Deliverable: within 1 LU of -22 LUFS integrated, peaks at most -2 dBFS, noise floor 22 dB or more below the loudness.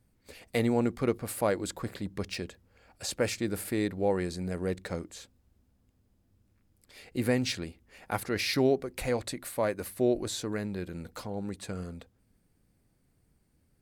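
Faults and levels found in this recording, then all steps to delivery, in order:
loudness -32.0 LUFS; peak -13.5 dBFS; loudness target -22.0 LUFS
-> gain +10 dB

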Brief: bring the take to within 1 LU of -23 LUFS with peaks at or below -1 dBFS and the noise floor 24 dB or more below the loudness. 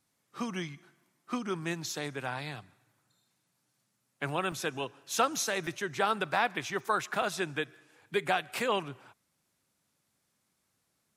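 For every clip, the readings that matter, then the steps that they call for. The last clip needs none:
dropouts 4; longest dropout 2.3 ms; loudness -33.0 LUFS; peak -13.0 dBFS; loudness target -23.0 LUFS
-> interpolate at 1.9/4.52/5.67/7.22, 2.3 ms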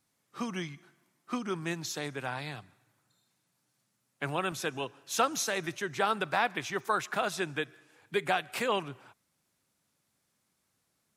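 dropouts 0; loudness -33.0 LUFS; peak -13.0 dBFS; loudness target -23.0 LUFS
-> gain +10 dB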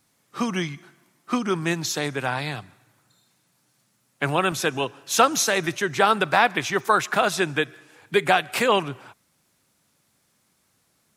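loudness -23.0 LUFS; peak -3.0 dBFS; noise floor -68 dBFS

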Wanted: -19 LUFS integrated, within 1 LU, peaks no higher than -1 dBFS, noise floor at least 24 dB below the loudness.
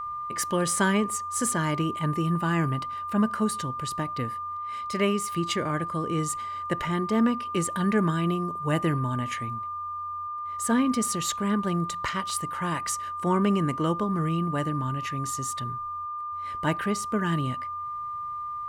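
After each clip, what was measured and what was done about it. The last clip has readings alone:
steady tone 1200 Hz; tone level -31 dBFS; loudness -27.5 LUFS; peak -11.0 dBFS; loudness target -19.0 LUFS
-> notch 1200 Hz, Q 30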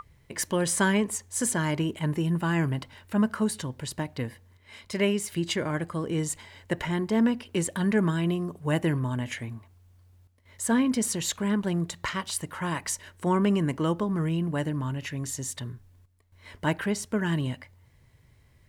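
steady tone none; loudness -28.0 LUFS; peak -11.5 dBFS; loudness target -19.0 LUFS
-> gain +9 dB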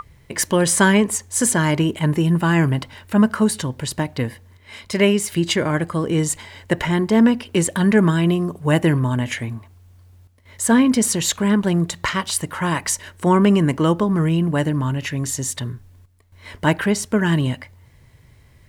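loudness -19.0 LUFS; peak -2.5 dBFS; noise floor -51 dBFS

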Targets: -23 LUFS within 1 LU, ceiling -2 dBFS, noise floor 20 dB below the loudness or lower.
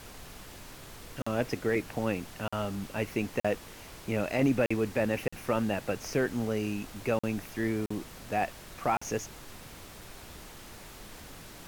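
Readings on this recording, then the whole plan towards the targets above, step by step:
dropouts 8; longest dropout 45 ms; noise floor -48 dBFS; noise floor target -52 dBFS; loudness -32.0 LUFS; peak -16.0 dBFS; loudness target -23.0 LUFS
-> interpolate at 1.22/2.48/3.4/4.66/5.28/7.19/7.86/8.97, 45 ms; noise print and reduce 6 dB; gain +9 dB

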